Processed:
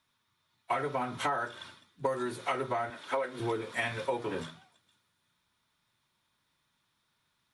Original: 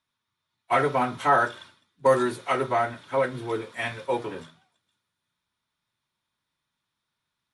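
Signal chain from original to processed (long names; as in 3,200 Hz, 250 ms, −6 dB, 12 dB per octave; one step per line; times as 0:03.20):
0:02.90–0:03.40: high-pass filter 320 Hz 12 dB per octave
downward compressor 16 to 1, threshold −34 dBFS, peak gain reduction 20.5 dB
level +5.5 dB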